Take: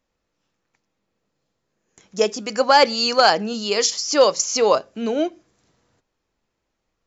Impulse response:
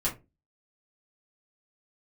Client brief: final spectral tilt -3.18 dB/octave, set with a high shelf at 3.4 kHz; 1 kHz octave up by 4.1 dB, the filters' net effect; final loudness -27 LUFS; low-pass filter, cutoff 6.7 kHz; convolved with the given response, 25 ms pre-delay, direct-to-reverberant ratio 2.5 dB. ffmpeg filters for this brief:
-filter_complex "[0:a]lowpass=6700,equalizer=f=1000:t=o:g=6,highshelf=f=3400:g=-7.5,asplit=2[s0][s1];[1:a]atrim=start_sample=2205,adelay=25[s2];[s1][s2]afir=irnorm=-1:irlink=0,volume=0.335[s3];[s0][s3]amix=inputs=2:normalize=0,volume=0.266"

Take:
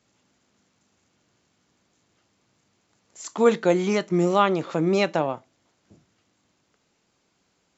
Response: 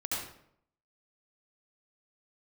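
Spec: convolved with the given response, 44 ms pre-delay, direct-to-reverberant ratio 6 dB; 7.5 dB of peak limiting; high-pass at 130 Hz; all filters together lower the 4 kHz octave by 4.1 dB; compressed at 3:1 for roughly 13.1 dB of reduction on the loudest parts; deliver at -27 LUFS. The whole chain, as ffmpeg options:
-filter_complex "[0:a]highpass=130,equalizer=f=4000:t=o:g=-5.5,acompressor=threshold=0.0251:ratio=3,alimiter=level_in=1.26:limit=0.0631:level=0:latency=1,volume=0.794,asplit=2[s0][s1];[1:a]atrim=start_sample=2205,adelay=44[s2];[s1][s2]afir=irnorm=-1:irlink=0,volume=0.299[s3];[s0][s3]amix=inputs=2:normalize=0,volume=2.66"

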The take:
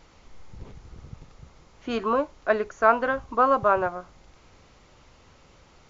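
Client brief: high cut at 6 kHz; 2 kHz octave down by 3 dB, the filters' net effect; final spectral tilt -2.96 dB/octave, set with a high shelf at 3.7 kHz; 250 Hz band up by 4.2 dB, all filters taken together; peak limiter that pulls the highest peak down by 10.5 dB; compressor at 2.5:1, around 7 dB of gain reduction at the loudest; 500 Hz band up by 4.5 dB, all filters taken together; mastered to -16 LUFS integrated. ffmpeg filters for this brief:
-af "lowpass=6000,equalizer=f=250:t=o:g=3.5,equalizer=f=500:t=o:g=5,equalizer=f=2000:t=o:g=-6,highshelf=f=3700:g=4,acompressor=threshold=0.0708:ratio=2.5,volume=6.68,alimiter=limit=0.562:level=0:latency=1"

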